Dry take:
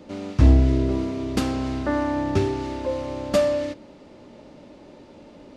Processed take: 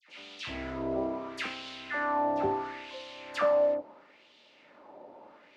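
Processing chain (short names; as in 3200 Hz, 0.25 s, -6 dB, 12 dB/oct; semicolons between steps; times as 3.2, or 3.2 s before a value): dispersion lows, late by 85 ms, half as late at 1600 Hz; LFO band-pass sine 0.74 Hz 720–3400 Hz; gain +4.5 dB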